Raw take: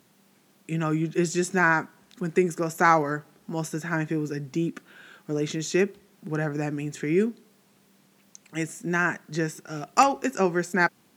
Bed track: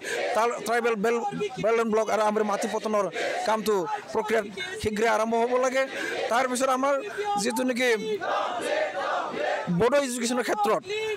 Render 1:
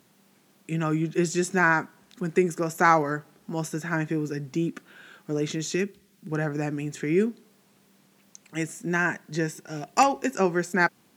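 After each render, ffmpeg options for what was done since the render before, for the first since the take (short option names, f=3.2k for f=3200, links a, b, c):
-filter_complex "[0:a]asettb=1/sr,asplit=3[a][b][c];[a]atrim=end=5.754[d];[b]atrim=start=5.75:end=6.32,asetpts=PTS-STARTPTS,afade=t=in:d=0.004:c=qsin,afade=t=out:st=0.566:d=0.004:c=qsin,equalizer=f=760:t=o:w=2:g=-11[e];[c]atrim=start=6.316[f];[d][e]acrossfade=d=0.004:c1=hsin:c2=qsin[g];[g][f]acrossfade=d=0.004:c1=qsin:c2=hsin,asettb=1/sr,asplit=3[h][i][j];[h]atrim=end=8.974[k];[i]atrim=start=8.97:end=10.36,asetpts=PTS-STARTPTS,afade=t=in:d=0.004:c=qsin,afade=t=out:st=1.386:d=0.004:c=qsin,asuperstop=centerf=1300:order=4:qfactor=6.3[l];[j]atrim=start=10.356[m];[k][l]acrossfade=d=0.004:c1=hsin:c2=qsin[n];[n][m]acrossfade=d=0.004:c1=qsin:c2=hsin"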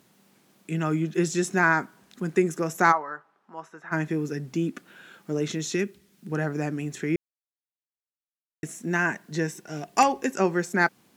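-filter_complex "[0:a]asplit=3[a][b][c];[a]afade=t=out:st=2.91:d=0.02[d];[b]bandpass=f=1.1k:t=q:w=2,afade=t=in:st=2.91:d=0.02,afade=t=out:st=3.91:d=0.02[e];[c]afade=t=in:st=3.91:d=0.02[f];[d][e][f]amix=inputs=3:normalize=0,asplit=3[g][h][i];[g]atrim=end=7.16,asetpts=PTS-STARTPTS,afade=t=out:st=7.156:d=0.004:c=hsin[j];[h]atrim=start=7.16:end=8.63,asetpts=PTS-STARTPTS,volume=0[k];[i]atrim=start=8.63,asetpts=PTS-STARTPTS,afade=t=in:d=0.004:c=hsin[l];[j][k][l]concat=n=3:v=0:a=1"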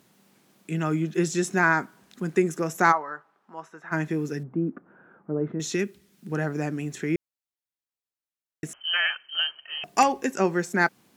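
-filter_complex "[0:a]asettb=1/sr,asplit=3[a][b][c];[a]atrim=end=4.434[d];[b]atrim=start=4.43:end=5.6,asetpts=PTS-STARTPTS,afade=t=in:d=0.004:c=qsin,afade=t=out:st=1.166:d=0.004:c=qsin,lowpass=f=1.3k:w=0.5412,lowpass=f=1.3k:w=1.3066[e];[c]atrim=start=5.596[f];[d][e]acrossfade=d=0.004:c1=hsin:c2=qsin[g];[g][f]acrossfade=d=0.004:c1=qsin:c2=hsin,asettb=1/sr,asplit=3[h][i][j];[h]atrim=end=8.734[k];[i]atrim=start=8.73:end=9.84,asetpts=PTS-STARTPTS,afade=t=in:d=0.004:c=qsin,afade=t=out:st=1.106:d=0.004:c=qsin,lowpass=f=2.8k:t=q:w=0.5098,lowpass=f=2.8k:t=q:w=0.6013,lowpass=f=2.8k:t=q:w=0.9,lowpass=f=2.8k:t=q:w=2.563,afreqshift=-3300[l];[j]atrim=start=9.836[m];[k][l]acrossfade=d=0.004:c1=hsin:c2=qsin[n];[n][m]acrossfade=d=0.004:c1=qsin:c2=hsin"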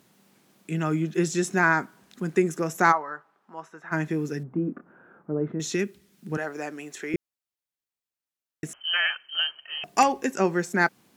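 -filter_complex "[0:a]asettb=1/sr,asplit=3[a][b][c];[a]atrim=end=4.514[d];[b]atrim=start=4.51:end=5.32,asetpts=PTS-STARTPTS,afade=t=in:d=0.004:c=qsin,afade=t=out:st=0.806:d=0.004:c=qsin,asplit=2[e][f];[f]adelay=28,volume=-6.5dB[g];[e][g]amix=inputs=2:normalize=0,atrim=end_sample=35721[h];[c]atrim=start=5.316[i];[d][h]acrossfade=d=0.004:c1=hsin:c2=qsin[j];[j][i]acrossfade=d=0.004:c1=qsin:c2=hsin,asettb=1/sr,asplit=3[k][l][m];[k]atrim=end=6.374[n];[l]atrim=start=6.37:end=7.14,asetpts=PTS-STARTPTS,afade=t=in:d=0.004:c=qsin,afade=t=out:st=0.766:d=0.004:c=qsin,highpass=440[o];[m]atrim=start=7.136[p];[n][o]acrossfade=d=0.004:c1=hsin:c2=qsin[q];[q][p]acrossfade=d=0.004:c1=qsin:c2=hsin"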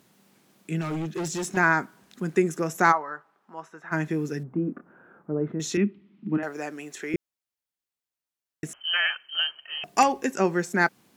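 -filter_complex "[0:a]asettb=1/sr,asplit=3[a][b][c];[a]atrim=end=0.814[d];[b]atrim=start=0.81:end=1.57,asetpts=PTS-STARTPTS,afade=t=in:d=0.004:c=qsin,afade=t=out:st=0.756:d=0.004:c=qsin,asoftclip=type=hard:threshold=-27dB[e];[c]atrim=start=1.566[f];[d][e]acrossfade=d=0.004:c1=hsin:c2=qsin[g];[g][f]acrossfade=d=0.004:c1=qsin:c2=hsin,asettb=1/sr,asplit=3[h][i][j];[h]atrim=end=5.774[k];[i]atrim=start=5.77:end=6.43,asetpts=PTS-STARTPTS,afade=t=in:d=0.004:c=qsin,afade=t=out:st=0.656:d=0.004:c=qsin,highpass=130,equalizer=f=210:t=q:w=4:g=10,equalizer=f=310:t=q:w=4:g=9,equalizer=f=490:t=q:w=4:g=-9,equalizer=f=740:t=q:w=4:g=-5,equalizer=f=1.6k:t=q:w=4:g=-9,lowpass=f=2.8k:w=0.5412,lowpass=f=2.8k:w=1.3066[l];[j]atrim=start=6.426[m];[k][l]acrossfade=d=0.004:c1=hsin:c2=qsin[n];[n][m]acrossfade=d=0.004:c1=qsin:c2=hsin"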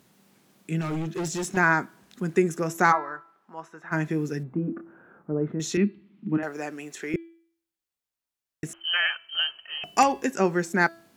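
-af "lowshelf=f=81:g=6,bandreject=f=333.3:t=h:w=4,bandreject=f=666.6:t=h:w=4,bandreject=f=999.9:t=h:w=4,bandreject=f=1.3332k:t=h:w=4,bandreject=f=1.6665k:t=h:w=4,bandreject=f=1.9998k:t=h:w=4,bandreject=f=2.3331k:t=h:w=4,bandreject=f=2.6664k:t=h:w=4,bandreject=f=2.9997k:t=h:w=4,bandreject=f=3.333k:t=h:w=4,bandreject=f=3.6663k:t=h:w=4,bandreject=f=3.9996k:t=h:w=4,bandreject=f=4.3329k:t=h:w=4,bandreject=f=4.6662k:t=h:w=4"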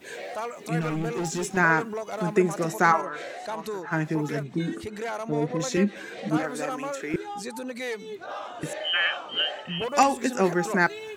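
-filter_complex "[1:a]volume=-9dB[a];[0:a][a]amix=inputs=2:normalize=0"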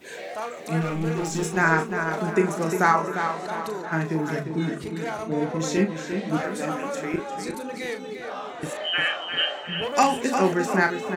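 -filter_complex "[0:a]asplit=2[a][b];[b]adelay=37,volume=-7.5dB[c];[a][c]amix=inputs=2:normalize=0,asplit=2[d][e];[e]adelay=351,lowpass=f=4.5k:p=1,volume=-7dB,asplit=2[f][g];[g]adelay=351,lowpass=f=4.5k:p=1,volume=0.44,asplit=2[h][i];[i]adelay=351,lowpass=f=4.5k:p=1,volume=0.44,asplit=2[j][k];[k]adelay=351,lowpass=f=4.5k:p=1,volume=0.44,asplit=2[l][m];[m]adelay=351,lowpass=f=4.5k:p=1,volume=0.44[n];[f][h][j][l][n]amix=inputs=5:normalize=0[o];[d][o]amix=inputs=2:normalize=0"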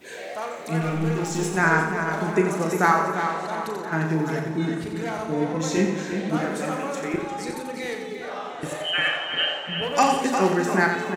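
-af "aecho=1:1:88|176|264|352|440|528:0.447|0.219|0.107|0.0526|0.0258|0.0126"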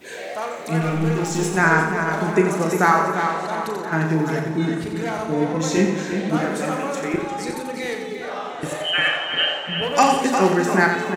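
-af "volume=3.5dB,alimiter=limit=-3dB:level=0:latency=1"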